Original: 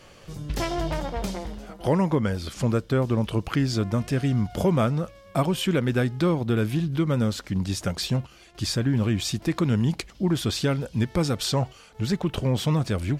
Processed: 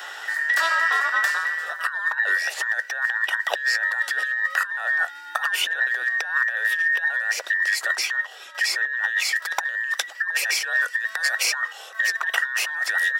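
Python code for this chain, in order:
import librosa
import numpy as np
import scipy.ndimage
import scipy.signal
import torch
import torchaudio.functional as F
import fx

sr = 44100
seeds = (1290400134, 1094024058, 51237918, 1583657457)

y = fx.band_invert(x, sr, width_hz=2000)
y = fx.high_shelf(y, sr, hz=5400.0, db=fx.steps((0.0, -8.0), (9.34, -2.5)))
y = fx.over_compress(y, sr, threshold_db=-27.0, ratio=-0.5)
y = scipy.signal.sosfilt(scipy.signal.butter(4, 500.0, 'highpass', fs=sr, output='sos'), y)
y = fx.high_shelf(y, sr, hz=12000.0, db=9.0)
y = fx.band_squash(y, sr, depth_pct=40)
y = y * librosa.db_to_amplitude(4.5)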